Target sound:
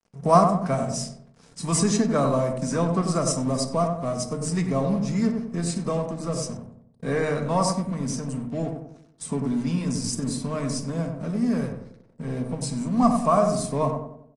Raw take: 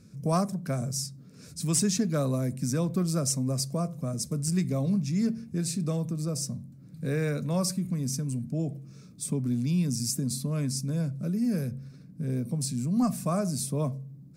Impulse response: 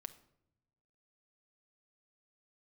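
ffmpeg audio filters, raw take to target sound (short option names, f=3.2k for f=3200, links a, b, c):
-filter_complex "[0:a]asettb=1/sr,asplit=3[a][b][c];[a]atrim=end=6.824[d];[b]atrim=start=6.82:end=8.89,asetpts=PTS-STARTPTS,afade=t=in:d=0.004:c=qsin,afade=t=out:st=2.066:d=0.004:c=qsin,agate=range=-33dB:threshold=-38dB:ratio=3:detection=peak[e];[c]atrim=start=8.886[f];[d][e]acrossfade=d=0.004:c1=hsin:c2=qsin[g];[g][f]acrossfade=d=0.004:c1=qsin:c2=hsin,equalizer=f=830:w=0.52:g=12.5,aecho=1:1:1:0.31,asubboost=boost=7:cutoff=51,aeval=exprs='sgn(val(0))*max(abs(val(0))-0.00631,0)':c=same,asplit=2[h][i];[i]adelay=94,lowpass=f=1k:p=1,volume=-4dB,asplit=2[j][k];[k]adelay=94,lowpass=f=1k:p=1,volume=0.48,asplit=2[l][m];[m]adelay=94,lowpass=f=1k:p=1,volume=0.48,asplit=2[n][o];[o]adelay=94,lowpass=f=1k:p=1,volume=0.48,asplit=2[p][q];[q]adelay=94,lowpass=f=1k:p=1,volume=0.48,asplit=2[r][s];[s]adelay=94,lowpass=f=1k:p=1,volume=0.48[t];[h][j][l][n][p][r][t]amix=inputs=7:normalize=0[u];[1:a]atrim=start_sample=2205,atrim=end_sample=3969,asetrate=57330,aresample=44100[v];[u][v]afir=irnorm=-1:irlink=0,volume=7.5dB" -ar 22050 -c:a aac -b:a 32k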